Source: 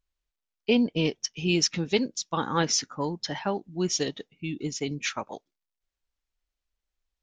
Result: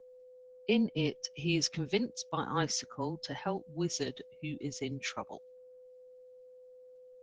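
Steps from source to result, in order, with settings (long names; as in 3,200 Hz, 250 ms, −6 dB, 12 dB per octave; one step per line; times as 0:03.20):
steady tone 520 Hz −46 dBFS
frequency shifter −15 Hz
level −6 dB
Opus 20 kbit/s 48,000 Hz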